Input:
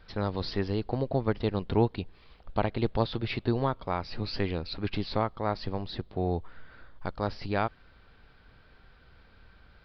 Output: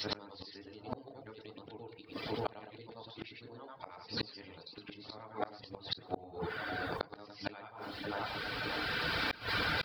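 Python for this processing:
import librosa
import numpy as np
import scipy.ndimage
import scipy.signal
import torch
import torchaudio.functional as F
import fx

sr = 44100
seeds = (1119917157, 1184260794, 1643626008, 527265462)

p1 = fx.frame_reverse(x, sr, frame_ms=235.0)
p2 = fx.recorder_agc(p1, sr, target_db=-24.0, rise_db_per_s=16.0, max_gain_db=30)
p3 = scipy.signal.sosfilt(scipy.signal.butter(2, 89.0, 'highpass', fs=sr, output='sos'), p2)
p4 = fx.high_shelf(p3, sr, hz=2400.0, db=10.5)
p5 = p4 + fx.echo_split(p4, sr, split_hz=1600.0, low_ms=578, high_ms=88, feedback_pct=52, wet_db=-16, dry=0)
p6 = fx.rev_fdn(p5, sr, rt60_s=0.5, lf_ratio=0.7, hf_ratio=0.5, size_ms=20.0, drr_db=3.0)
p7 = fx.dereverb_blind(p6, sr, rt60_s=0.69)
p8 = fx.gate_flip(p7, sr, shuts_db=-24.0, range_db=-39)
p9 = fx.low_shelf(p8, sr, hz=130.0, db=-7.5)
p10 = fx.env_flatten(p9, sr, amount_pct=50)
y = F.gain(torch.from_numpy(p10), 2.5).numpy()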